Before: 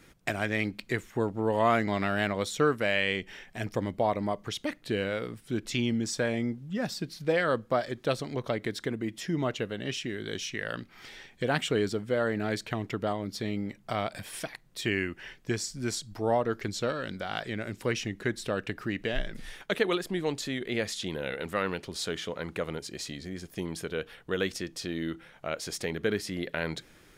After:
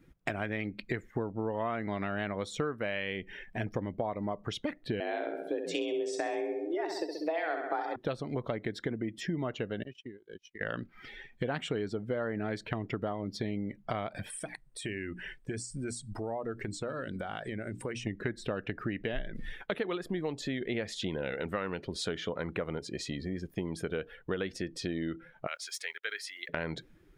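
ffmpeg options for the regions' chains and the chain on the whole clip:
-filter_complex "[0:a]asettb=1/sr,asplit=3[s0][s1][s2];[s0]atrim=end=5.004[s3];[s1]atrim=start=5:end=7.96,asetpts=PTS-STARTPTS,afade=t=in:d=0.004:c=qsin,afade=t=out:st=2.956:d=0.004:c=qsin,aecho=1:1:65|130|195|260|325|390|455|520:0.473|0.284|0.17|0.102|0.0613|0.0368|0.0221|0.0132,atrim=end_sample=130536,afreqshift=160[s4];[s2]atrim=start=7.956[s5];[s3][s4]acrossfade=d=0.004:c1=hsin:c2=qsin[s6];[s6][s5]acrossfade=d=0.004:c1=qsin:c2=hsin,asettb=1/sr,asplit=3[s7][s8][s9];[s7]atrim=end=9.834[s10];[s8]atrim=start=9.83:end=10.61,asetpts=PTS-STARTPTS,afade=t=in:d=0.004:c=qsin,afade=t=out:st=0.776:d=0.004:c=qsin,agate=range=0.0178:threshold=0.02:ratio=16:release=100:detection=peak,acompressor=threshold=0.00794:ratio=16:attack=3.2:release=140:knee=1:detection=peak,asoftclip=type=hard:threshold=0.0158[s11];[s9]atrim=start=10.606[s12];[s10][s11]acrossfade=d=0.004:c1=hsin:c2=qsin[s13];[s13][s12]acrossfade=d=0.004:c1=qsin:c2=hsin,asettb=1/sr,asplit=3[s14][s15][s16];[s14]atrim=end=14.304[s17];[s15]atrim=start=14.3:end=18.07,asetpts=PTS-STARTPTS,afade=t=in:d=0.004:c=qsin,afade=t=out:st=3.766:d=0.004:c=qsin,equalizer=f=8600:t=o:w=0.37:g=14.5,bandreject=f=60:t=h:w=6,bandreject=f=120:t=h:w=6,bandreject=f=180:t=h:w=6,bandreject=f=240:t=h:w=6,bandreject=f=300:t=h:w=6,acompressor=threshold=0.0126:ratio=3:attack=3.2:release=140:knee=1:detection=peak[s18];[s16]atrim=start=18.066[s19];[s17][s18]acrossfade=d=0.004:c1=hsin:c2=qsin[s20];[s20][s19]acrossfade=d=0.004:c1=qsin:c2=hsin,asettb=1/sr,asplit=3[s21][s22][s23];[s21]atrim=end=25.474[s24];[s22]atrim=start=25.47:end=26.49,asetpts=PTS-STARTPTS,afade=t=in:d=0.004:c=qsin,afade=t=out:st=1.016:d=0.004:c=qsin,highpass=1500,aeval=exprs='val(0)*gte(abs(val(0)),0.002)':c=same[s25];[s23]atrim=start=26.486[s26];[s24][s25]acrossfade=d=0.004:c1=hsin:c2=qsin[s27];[s27][s26]acrossfade=d=0.004:c1=qsin:c2=hsin,afftdn=nr=16:nf=-47,equalizer=f=6900:w=0.5:g=-7.5,acompressor=threshold=0.0178:ratio=6,volume=1.68"

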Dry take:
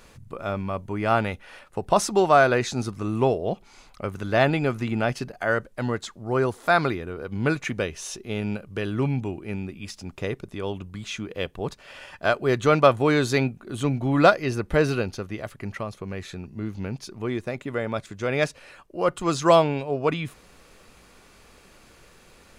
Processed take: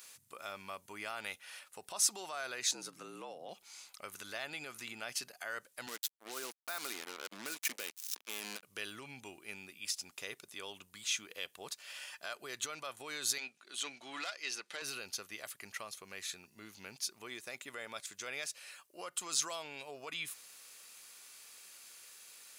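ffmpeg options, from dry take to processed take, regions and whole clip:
-filter_complex "[0:a]asettb=1/sr,asplit=3[s0][s1][s2];[s0]atrim=end=2.714[s3];[s1]atrim=start=2.71:end=3.49,asetpts=PTS-STARTPTS,afade=t=in:d=0.004:c=qsin,afade=t=out:st=0.776:d=0.004:c=qsin,highshelf=f=3100:g=-8.5,aeval=exprs='val(0)+0.00891*(sin(2*PI*60*n/s)+sin(2*PI*2*60*n/s)/2+sin(2*PI*3*60*n/s)/3+sin(2*PI*4*60*n/s)/4+sin(2*PI*5*60*n/s)/5)':c=same,afreqshift=77[s4];[s2]atrim=start=3.486[s5];[s3][s4]acrossfade=d=0.004:c1=hsin:c2=qsin[s6];[s6][s5]acrossfade=d=0.004:c1=qsin:c2=hsin,asettb=1/sr,asplit=3[s7][s8][s9];[s7]atrim=end=5.874[s10];[s8]atrim=start=5.87:end=8.63,asetpts=PTS-STARTPTS,afade=t=in:d=0.004:c=qsin,afade=t=out:st=2.756:d=0.004:c=qsin,acrossover=split=6100[s11][s12];[s12]acompressor=threshold=0.00501:ratio=4:attack=1:release=60[s13];[s11][s13]amix=inputs=2:normalize=0,acrusher=bits=4:mix=0:aa=0.5,highpass=f=240:t=q:w=1.5[s14];[s9]atrim=start=8.626[s15];[s10][s14]acrossfade=d=0.004:c1=hsin:c2=qsin[s16];[s16][s15]acrossfade=d=0.004:c1=qsin:c2=hsin,asettb=1/sr,asplit=3[s17][s18][s19];[s17]atrim=end=13.384[s20];[s18]atrim=start=13.38:end=14.82,asetpts=PTS-STARTPTS,afade=t=in:d=0.004:c=qsin,afade=t=out:st=1.436:d=0.004:c=qsin,highpass=250,lowpass=4500,highshelf=f=2300:g=11.5,aeval=exprs='(tanh(2.51*val(0)+0.8)-tanh(0.8))/2.51':c=same[s21];[s19]atrim=start=14.816[s22];[s20][s21]acrossfade=d=0.004:c1=hsin:c2=qsin[s23];[s23][s22]acrossfade=d=0.004:c1=qsin:c2=hsin,acompressor=threshold=0.0708:ratio=3,alimiter=limit=0.0944:level=0:latency=1:release=64,aderivative,volume=1.88"

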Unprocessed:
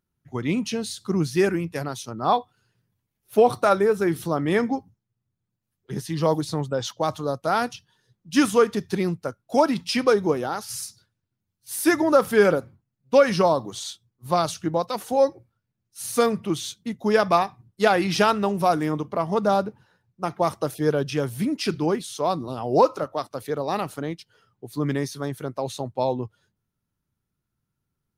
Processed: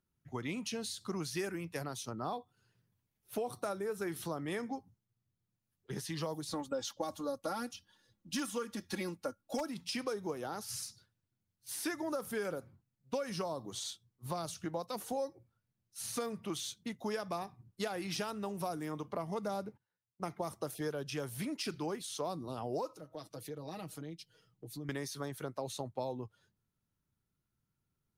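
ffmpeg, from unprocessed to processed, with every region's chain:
-filter_complex "[0:a]asettb=1/sr,asplit=3[s0][s1][s2];[s0]atrim=end=6.504[s3];[s1]atrim=start=6.5:end=9.68,asetpts=PTS-STARTPTS,afade=t=in:d=0.004:c=qsin,afade=t=out:st=3.176:d=0.004:c=qsin,aecho=1:1:3.6:0.86,atrim=end_sample=140238,aeval=exprs='0.562*(abs(mod(val(0)/0.562+3,4)-2)-1)':c=same[s4];[s2]atrim=start=9.676[s5];[s3][s4]acrossfade=d=0.004:c1=hsin:c2=qsin[s6];[s6][s5]acrossfade=d=0.004:c1=qsin:c2=hsin,asettb=1/sr,asplit=3[s7][s8][s9];[s7]atrim=end=19.214[s10];[s8]atrim=start=19.21:end=20.39,asetpts=PTS-STARTPTS,afade=t=in:d=0.004:c=qsin,afade=t=out:st=1.176:d=0.004:c=qsin,equalizer=f=2100:w=7.1:g=10,agate=range=0.0562:threshold=0.00282:ratio=16:release=100:detection=peak[s11];[s9]atrim=start=20.386[s12];[s10][s11]acrossfade=d=0.004:c1=hsin:c2=qsin[s13];[s13][s12]acrossfade=d=0.004:c1=qsin:c2=hsin,asettb=1/sr,asplit=3[s14][s15][s16];[s14]atrim=end=22.934[s17];[s15]atrim=start=22.93:end=24.89,asetpts=PTS-STARTPTS,afade=t=in:d=0.004:c=qsin,afade=t=out:st=1.956:d=0.004:c=qsin,equalizer=f=1100:w=0.73:g=-10,aecho=1:1:6.3:0.72,atrim=end_sample=86436,acompressor=threshold=0.01:ratio=2.5:attack=3.2:release=140:knee=1:detection=peak[s18];[s16]atrim=start=24.886[s19];[s17][s18]acrossfade=d=0.004:c1=hsin:c2=qsin[s20];[s20][s19]acrossfade=d=0.004:c1=qsin:c2=hsin,alimiter=limit=0.282:level=0:latency=1:release=402,acrossover=split=530|6400[s21][s22][s23];[s21]acompressor=threshold=0.0158:ratio=4[s24];[s22]acompressor=threshold=0.0141:ratio=4[s25];[s23]acompressor=threshold=0.01:ratio=4[s26];[s24][s25][s26]amix=inputs=3:normalize=0,volume=0.596"

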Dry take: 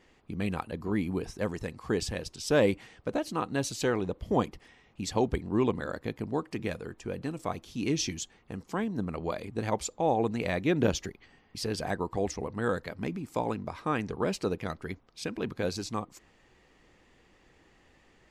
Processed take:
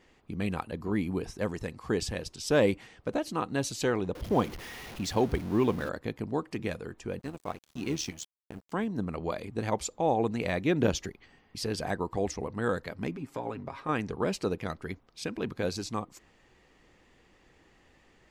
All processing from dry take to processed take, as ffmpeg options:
-filter_complex "[0:a]asettb=1/sr,asplit=3[s0][s1][s2];[s0]atrim=end=4.154[s3];[s1]atrim=start=4.15:end=5.89,asetpts=PTS-STARTPTS,afade=t=in:d=0.004:c=qsin,afade=t=out:st=1.736:d=0.004:c=qsin,aeval=exprs='val(0)+0.5*0.0119*sgn(val(0))':c=same,equalizer=f=7800:t=o:w=0.3:g=-5.5[s4];[s2]atrim=start=5.886[s5];[s3][s4]acrossfade=d=0.004:c1=hsin:c2=qsin[s6];[s6][s5]acrossfade=d=0.004:c1=qsin:c2=hsin,asettb=1/sr,asplit=3[s7][s8][s9];[s7]atrim=end=7.194[s10];[s8]atrim=start=7.19:end=8.72,asetpts=PTS-STARTPTS,afade=t=in:d=0.004:c=qsin,afade=t=out:st=1.526:d=0.004:c=qsin,acrusher=bits=9:mode=log:mix=0:aa=0.000001,tremolo=f=76:d=0.519,aeval=exprs='sgn(val(0))*max(abs(val(0))-0.00447,0)':c=same[s11];[s9]atrim=start=8.716[s12];[s10][s11]acrossfade=d=0.004:c1=hsin:c2=qsin[s13];[s13][s12]acrossfade=d=0.004:c1=qsin:c2=hsin,asettb=1/sr,asplit=3[s14][s15][s16];[s14]atrim=end=13.114[s17];[s15]atrim=start=13.11:end=13.89,asetpts=PTS-STARTPTS,afade=t=in:d=0.004:c=qsin,afade=t=out:st=0.776:d=0.004:c=qsin,bass=f=250:g=-4,treble=f=4000:g=-8,acompressor=threshold=0.0224:ratio=2.5:attack=3.2:release=140:knee=1:detection=peak,aecho=1:1:7.4:0.62,atrim=end_sample=34398[s18];[s16]atrim=start=13.886[s19];[s17][s18]acrossfade=d=0.004:c1=hsin:c2=qsin[s20];[s20][s19]acrossfade=d=0.004:c1=qsin:c2=hsin"

